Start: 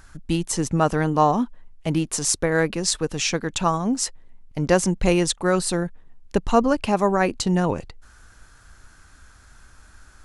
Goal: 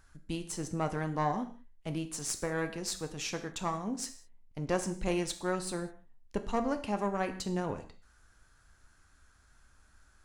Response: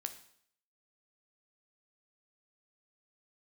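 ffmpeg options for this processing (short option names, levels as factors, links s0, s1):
-filter_complex "[0:a]aeval=exprs='(tanh(2.51*val(0)+0.6)-tanh(0.6))/2.51':c=same[s0];[1:a]atrim=start_sample=2205,afade=t=out:st=0.26:d=0.01,atrim=end_sample=11907[s1];[s0][s1]afir=irnorm=-1:irlink=0,volume=0.376"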